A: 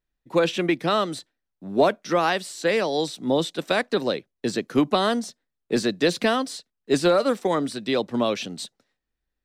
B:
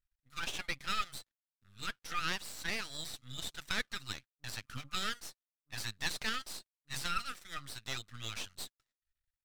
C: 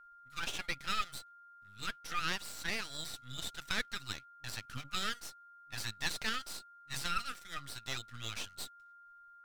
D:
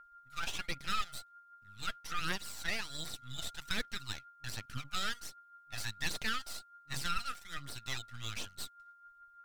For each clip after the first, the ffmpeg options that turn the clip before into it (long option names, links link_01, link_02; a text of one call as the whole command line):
ffmpeg -i in.wav -af "flanger=delay=0.6:depth=3:regen=63:speed=0.84:shape=triangular,afftfilt=real='re*(1-between(b*sr/4096,150,1200))':imag='im*(1-between(b*sr/4096,150,1200))':win_size=4096:overlap=0.75,aeval=exprs='max(val(0),0)':channel_layout=same" out.wav
ffmpeg -i in.wav -af "aeval=exprs='val(0)+0.00178*sin(2*PI*1400*n/s)':channel_layout=same" out.wav
ffmpeg -i in.wav -af "asoftclip=type=hard:threshold=-22dB,aphaser=in_gain=1:out_gain=1:delay=1.6:decay=0.43:speed=1.3:type=triangular,volume=-1dB" out.wav